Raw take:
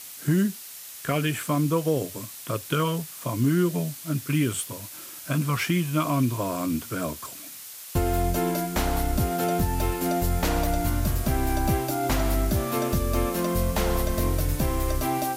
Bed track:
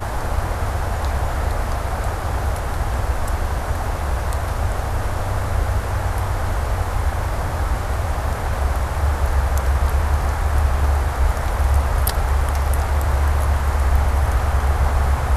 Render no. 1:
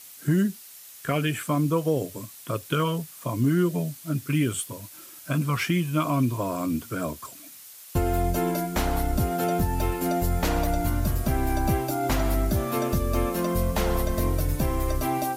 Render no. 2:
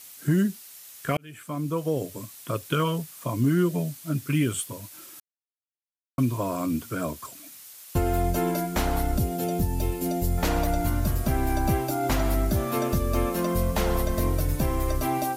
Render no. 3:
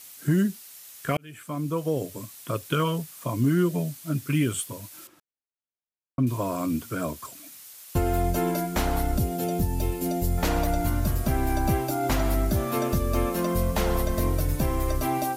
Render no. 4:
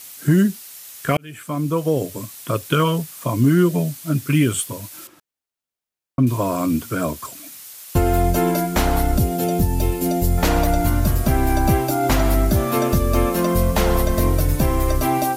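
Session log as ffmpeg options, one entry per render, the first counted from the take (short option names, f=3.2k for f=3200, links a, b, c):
-af "afftdn=nr=6:nf=-41"
-filter_complex "[0:a]asettb=1/sr,asplit=3[a][b][c];[a]atrim=end=9.184[d];[b]atrim=start=9.18:end=10.38,asetpts=PTS-STARTPTS,afade=t=in:d=0.004:c=qsin,afade=t=out:st=1.196:d=0.004:c=qsin,equalizer=f=1.3k:t=o:w=1.5:g=-12.5[e];[c]atrim=start=10.376[f];[d][e]acrossfade=d=0.004:c1=hsin:c2=qsin[g];[g][f]acrossfade=d=0.004:c1=qsin:c2=hsin,asplit=4[h][i][j][k];[h]atrim=end=1.17,asetpts=PTS-STARTPTS,afade=t=out:st=1.166:d=0.004:c=hsin[l];[i]atrim=start=1.17:end=5.2,asetpts=PTS-STARTPTS,afade=t=in:d=1.34:c=qsin,afade=t=out:st=4.026:d=0.004:c=hsin[m];[j]atrim=start=5.2:end=6.18,asetpts=PTS-STARTPTS,volume=0[n];[k]atrim=start=6.18,asetpts=PTS-STARTPTS,afade=t=in:d=0.004:c=hsin[o];[l][m][n][o]concat=n=4:v=0:a=1"
-filter_complex "[0:a]asettb=1/sr,asplit=3[a][b][c];[a]atrim=end=5.074[d];[b]atrim=start=5.07:end=6.27,asetpts=PTS-STARTPTS,afade=t=in:d=0.004:c=qsin,afade=t=out:st=1.196:d=0.004:c=qsin,lowpass=f=1k:p=1[e];[c]atrim=start=6.266[f];[d][e]acrossfade=d=0.004:c1=hsin:c2=qsin[g];[g][f]acrossfade=d=0.004:c1=qsin:c2=hsin"
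-af "volume=7dB"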